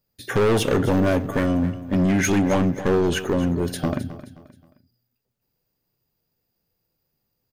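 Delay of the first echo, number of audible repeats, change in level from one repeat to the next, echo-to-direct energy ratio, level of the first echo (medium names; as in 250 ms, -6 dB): 264 ms, 3, -9.0 dB, -14.0 dB, -14.5 dB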